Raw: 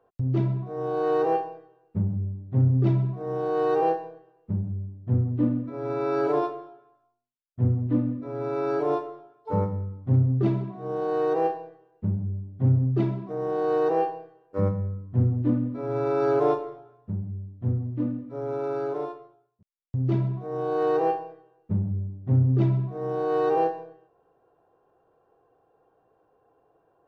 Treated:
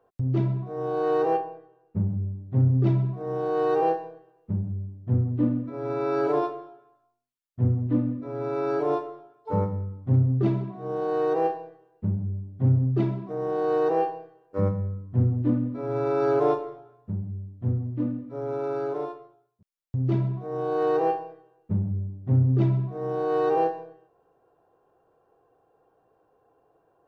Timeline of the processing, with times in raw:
1.37–2 LPF 2500 Hz 6 dB/oct

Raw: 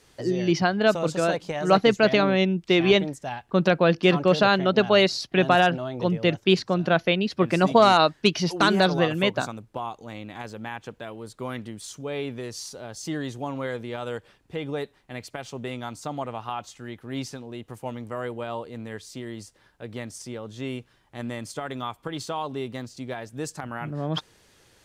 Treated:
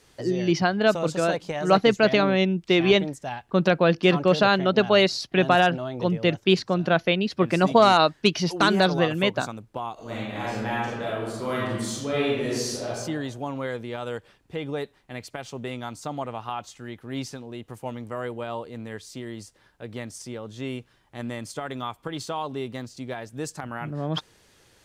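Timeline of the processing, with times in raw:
9.93–12.89 reverb throw, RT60 1.2 s, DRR -7 dB

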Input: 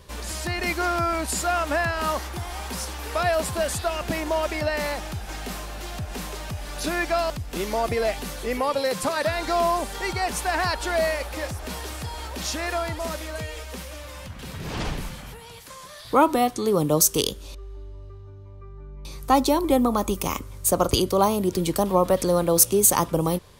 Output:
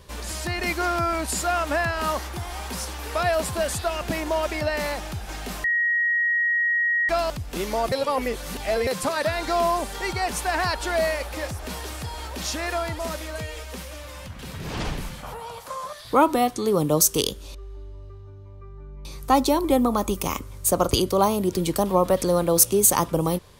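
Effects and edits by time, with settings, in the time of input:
5.64–7.09 bleep 1890 Hz -19 dBFS
7.92–8.87 reverse
15.23–15.93 band shelf 810 Hz +11.5 dB

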